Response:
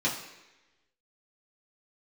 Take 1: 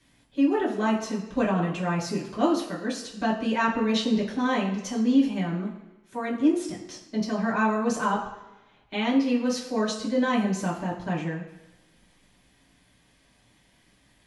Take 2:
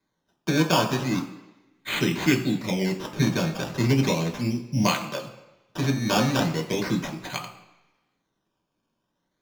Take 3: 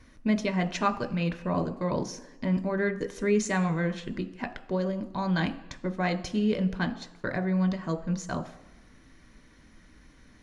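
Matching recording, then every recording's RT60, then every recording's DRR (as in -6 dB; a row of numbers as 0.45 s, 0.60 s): 1; 1.0 s, 1.0 s, 1.0 s; -6.5 dB, 1.5 dB, 7.0 dB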